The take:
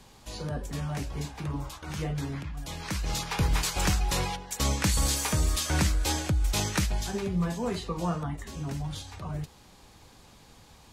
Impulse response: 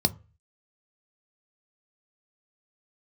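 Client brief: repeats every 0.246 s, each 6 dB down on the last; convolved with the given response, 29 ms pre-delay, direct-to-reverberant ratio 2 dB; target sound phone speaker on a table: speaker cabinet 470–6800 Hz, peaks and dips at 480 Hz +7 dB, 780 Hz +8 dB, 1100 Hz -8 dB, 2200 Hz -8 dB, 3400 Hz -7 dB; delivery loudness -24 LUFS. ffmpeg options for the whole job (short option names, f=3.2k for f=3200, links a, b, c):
-filter_complex "[0:a]aecho=1:1:246|492|738|984|1230|1476:0.501|0.251|0.125|0.0626|0.0313|0.0157,asplit=2[a][b];[1:a]atrim=start_sample=2205,adelay=29[c];[b][c]afir=irnorm=-1:irlink=0,volume=-11.5dB[d];[a][d]amix=inputs=2:normalize=0,highpass=f=470:w=0.5412,highpass=f=470:w=1.3066,equalizer=f=480:t=q:w=4:g=7,equalizer=f=780:t=q:w=4:g=8,equalizer=f=1.1k:t=q:w=4:g=-8,equalizer=f=2.2k:t=q:w=4:g=-8,equalizer=f=3.4k:t=q:w=4:g=-7,lowpass=f=6.8k:w=0.5412,lowpass=f=6.8k:w=1.3066,volume=6dB"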